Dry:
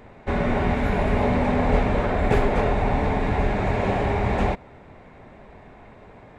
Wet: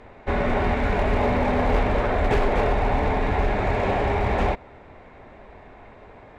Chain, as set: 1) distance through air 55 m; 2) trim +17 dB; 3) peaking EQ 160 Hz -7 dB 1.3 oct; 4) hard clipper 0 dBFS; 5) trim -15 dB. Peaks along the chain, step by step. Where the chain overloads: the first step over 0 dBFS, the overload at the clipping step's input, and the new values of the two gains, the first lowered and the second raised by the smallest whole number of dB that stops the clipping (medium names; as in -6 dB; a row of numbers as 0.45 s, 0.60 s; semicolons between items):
-7.0 dBFS, +10.0 dBFS, +8.0 dBFS, 0.0 dBFS, -15.0 dBFS; step 2, 8.0 dB; step 2 +9 dB, step 5 -7 dB